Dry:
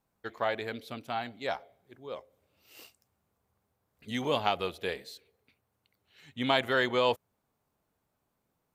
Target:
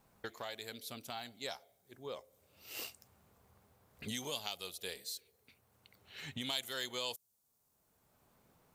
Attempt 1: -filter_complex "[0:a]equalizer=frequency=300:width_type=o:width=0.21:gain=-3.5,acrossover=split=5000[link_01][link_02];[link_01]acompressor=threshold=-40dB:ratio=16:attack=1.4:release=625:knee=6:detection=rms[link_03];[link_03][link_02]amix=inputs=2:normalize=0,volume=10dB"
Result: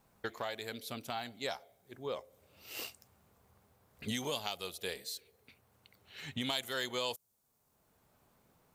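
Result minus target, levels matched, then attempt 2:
downward compressor: peak gain reduction −5.5 dB
-filter_complex "[0:a]equalizer=frequency=300:width_type=o:width=0.21:gain=-3.5,acrossover=split=5000[link_01][link_02];[link_01]acompressor=threshold=-46dB:ratio=16:attack=1.4:release=625:knee=6:detection=rms[link_03];[link_03][link_02]amix=inputs=2:normalize=0,volume=10dB"

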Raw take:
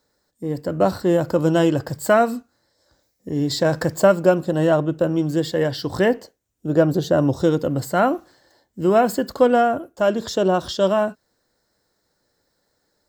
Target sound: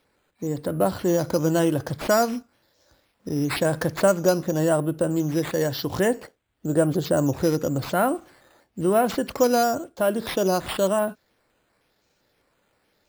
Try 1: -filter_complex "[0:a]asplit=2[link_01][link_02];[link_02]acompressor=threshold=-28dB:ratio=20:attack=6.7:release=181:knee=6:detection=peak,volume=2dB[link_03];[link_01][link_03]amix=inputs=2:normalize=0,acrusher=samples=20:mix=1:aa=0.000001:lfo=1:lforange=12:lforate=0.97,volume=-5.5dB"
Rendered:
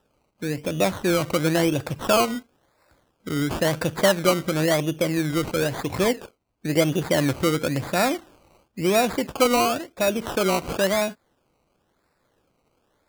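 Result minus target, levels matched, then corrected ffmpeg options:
sample-and-hold swept by an LFO: distortion +11 dB
-filter_complex "[0:a]asplit=2[link_01][link_02];[link_02]acompressor=threshold=-28dB:ratio=20:attack=6.7:release=181:knee=6:detection=peak,volume=2dB[link_03];[link_01][link_03]amix=inputs=2:normalize=0,acrusher=samples=6:mix=1:aa=0.000001:lfo=1:lforange=3.6:lforate=0.97,volume=-5.5dB"

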